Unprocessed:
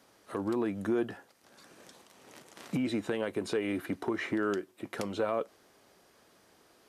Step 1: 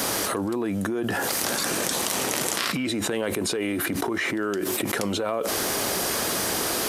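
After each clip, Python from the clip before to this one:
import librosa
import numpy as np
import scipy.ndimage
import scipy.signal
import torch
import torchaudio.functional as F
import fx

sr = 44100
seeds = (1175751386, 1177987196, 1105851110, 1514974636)

y = fx.spec_box(x, sr, start_s=2.58, length_s=0.28, low_hz=1000.0, high_hz=5600.0, gain_db=8)
y = fx.high_shelf(y, sr, hz=6100.0, db=11.0)
y = fx.env_flatten(y, sr, amount_pct=100)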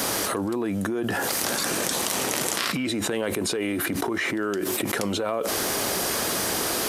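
y = x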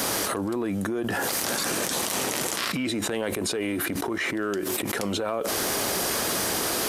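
y = fx.transient(x, sr, attack_db=-11, sustain_db=-7)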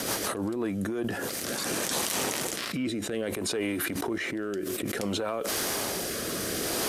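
y = fx.rotary_switch(x, sr, hz=6.3, then_hz=0.6, switch_at_s=0.29)
y = F.gain(torch.from_numpy(y), -1.0).numpy()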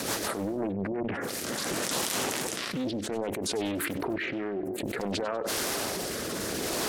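y = fx.spec_gate(x, sr, threshold_db=-20, keep='strong')
y = fx.echo_feedback(y, sr, ms=97, feedback_pct=45, wet_db=-17.0)
y = fx.doppler_dist(y, sr, depth_ms=0.89)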